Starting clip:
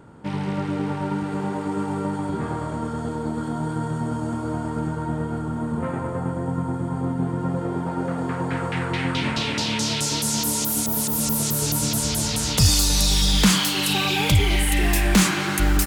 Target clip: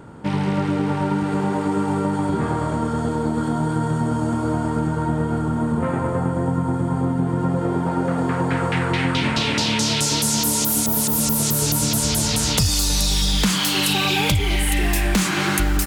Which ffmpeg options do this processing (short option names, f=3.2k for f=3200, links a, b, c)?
-af "acompressor=threshold=-22dB:ratio=6,volume=6dB"